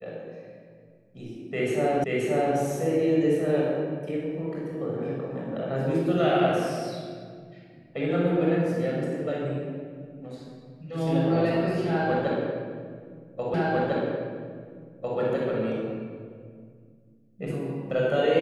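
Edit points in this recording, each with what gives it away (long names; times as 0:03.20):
0:02.04: the same again, the last 0.53 s
0:13.54: the same again, the last 1.65 s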